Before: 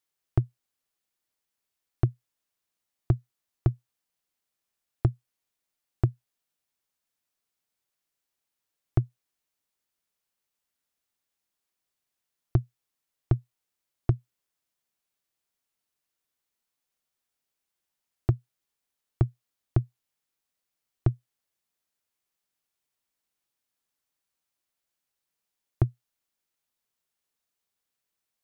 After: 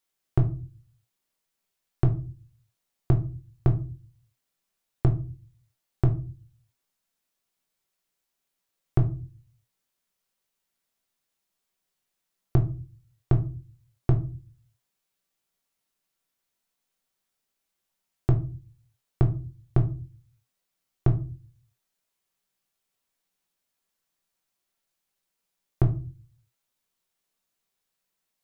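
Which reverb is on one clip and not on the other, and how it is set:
rectangular room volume 180 cubic metres, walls furnished, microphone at 1.1 metres
level +1.5 dB

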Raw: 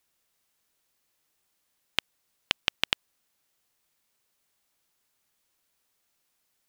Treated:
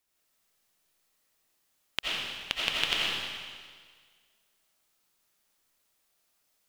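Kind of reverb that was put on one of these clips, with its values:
comb and all-pass reverb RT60 1.7 s, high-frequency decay 1×, pre-delay 45 ms, DRR −5.5 dB
level −5 dB

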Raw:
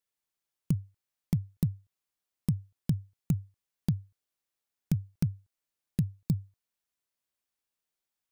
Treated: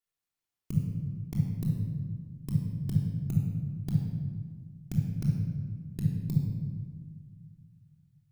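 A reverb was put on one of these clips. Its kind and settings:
rectangular room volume 2,000 cubic metres, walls mixed, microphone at 3.3 metres
level −6.5 dB

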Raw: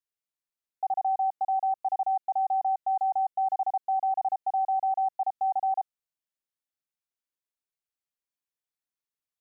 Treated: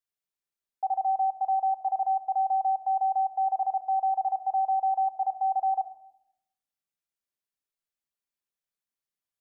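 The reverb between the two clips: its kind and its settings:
rectangular room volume 2,500 cubic metres, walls furnished, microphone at 1.2 metres
level −1.5 dB

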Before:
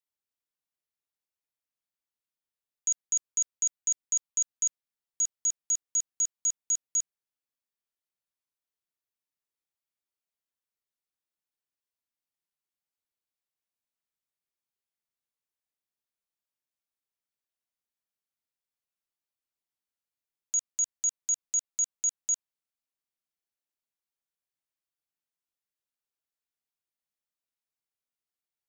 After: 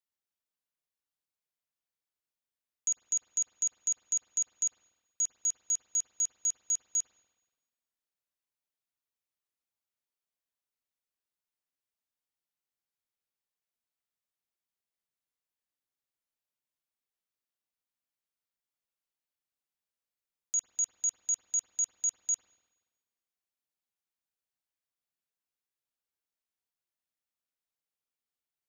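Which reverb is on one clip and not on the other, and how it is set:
spring reverb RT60 1.3 s, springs 48/52/60 ms, chirp 50 ms, DRR 7 dB
level −2.5 dB

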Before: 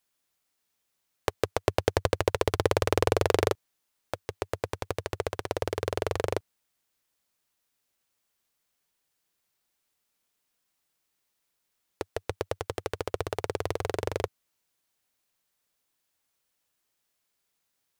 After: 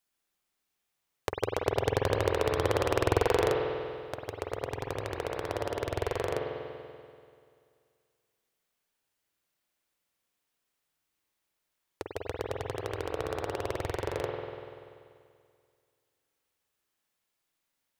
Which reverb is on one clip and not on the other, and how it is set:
spring reverb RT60 2.2 s, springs 48 ms, chirp 60 ms, DRR −0.5 dB
level −4.5 dB

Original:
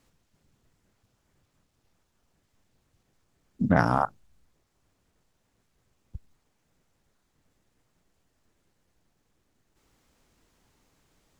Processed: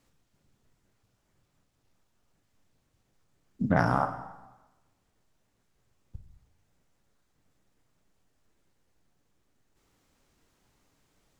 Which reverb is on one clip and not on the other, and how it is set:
dense smooth reverb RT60 1.1 s, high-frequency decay 0.85×, DRR 7 dB
level −3 dB

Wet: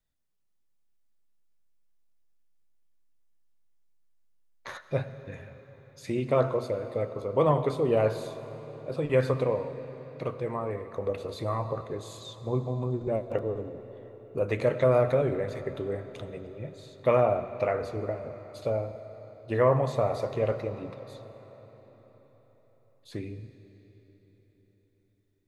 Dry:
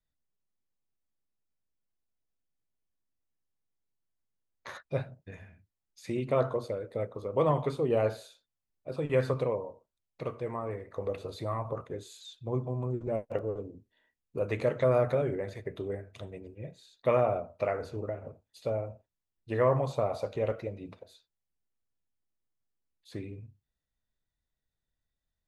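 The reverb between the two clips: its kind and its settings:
comb and all-pass reverb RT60 4.8 s, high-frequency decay 0.8×, pre-delay 55 ms, DRR 11.5 dB
level +3 dB

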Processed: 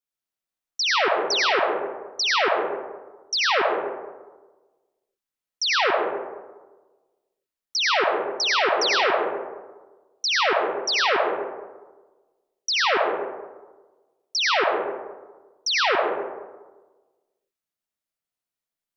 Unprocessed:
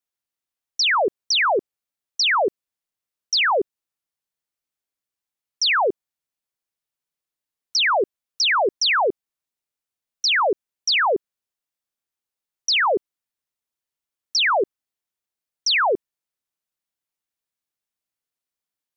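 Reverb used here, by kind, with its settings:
comb and all-pass reverb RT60 1.3 s, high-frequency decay 0.4×, pre-delay 50 ms, DRR −1.5 dB
level −4.5 dB

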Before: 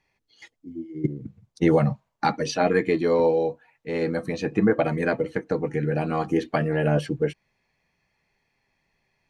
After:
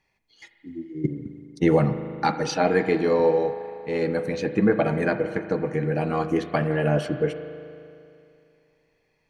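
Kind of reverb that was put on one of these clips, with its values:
spring reverb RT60 2.6 s, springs 38 ms, chirp 45 ms, DRR 9 dB

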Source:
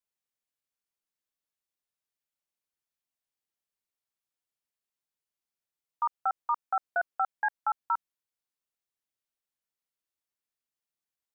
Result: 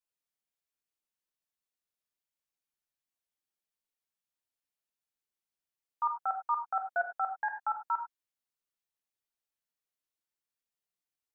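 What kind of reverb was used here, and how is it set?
reverb whose tail is shaped and stops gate 120 ms flat, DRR 4 dB
level −4 dB

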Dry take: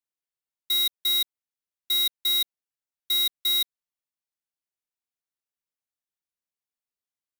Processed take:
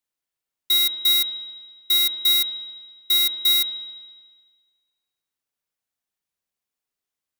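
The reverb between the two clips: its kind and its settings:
spring reverb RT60 1.5 s, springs 39 ms, chirp 40 ms, DRR 7 dB
level +5.5 dB

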